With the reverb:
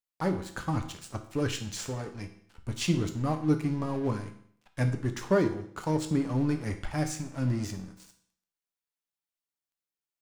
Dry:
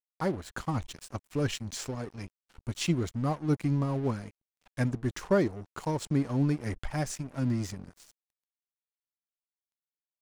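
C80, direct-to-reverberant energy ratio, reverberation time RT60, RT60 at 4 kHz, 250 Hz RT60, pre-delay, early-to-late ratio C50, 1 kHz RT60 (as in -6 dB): 13.5 dB, 5.0 dB, 0.60 s, 0.60 s, 0.60 s, 6 ms, 10.5 dB, 0.60 s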